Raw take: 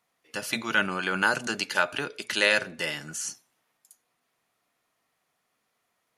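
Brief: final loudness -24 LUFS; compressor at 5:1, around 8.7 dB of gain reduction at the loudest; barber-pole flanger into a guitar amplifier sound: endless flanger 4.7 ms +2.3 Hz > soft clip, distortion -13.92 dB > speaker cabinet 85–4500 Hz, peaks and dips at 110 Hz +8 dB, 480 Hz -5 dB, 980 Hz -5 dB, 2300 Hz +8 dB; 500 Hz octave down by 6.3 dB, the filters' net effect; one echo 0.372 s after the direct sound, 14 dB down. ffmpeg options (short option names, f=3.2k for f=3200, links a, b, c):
-filter_complex "[0:a]equalizer=f=500:t=o:g=-5,acompressor=threshold=-28dB:ratio=5,aecho=1:1:372:0.2,asplit=2[a][b];[b]adelay=4.7,afreqshift=2.3[c];[a][c]amix=inputs=2:normalize=1,asoftclip=threshold=-29dB,highpass=85,equalizer=f=110:t=q:w=4:g=8,equalizer=f=480:t=q:w=4:g=-5,equalizer=f=980:t=q:w=4:g=-5,equalizer=f=2.3k:t=q:w=4:g=8,lowpass=f=4.5k:w=0.5412,lowpass=f=4.5k:w=1.3066,volume=12.5dB"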